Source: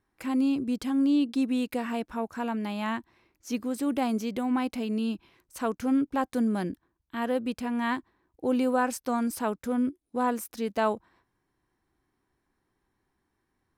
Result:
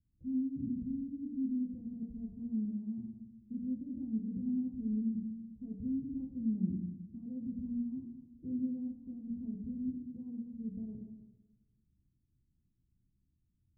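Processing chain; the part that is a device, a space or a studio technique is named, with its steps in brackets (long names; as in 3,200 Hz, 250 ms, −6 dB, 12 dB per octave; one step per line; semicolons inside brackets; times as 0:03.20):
club heard from the street (brickwall limiter −24.5 dBFS, peak gain reduction 10 dB; low-pass filter 190 Hz 24 dB per octave; convolution reverb RT60 1.1 s, pre-delay 8 ms, DRR −1 dB)
level +1 dB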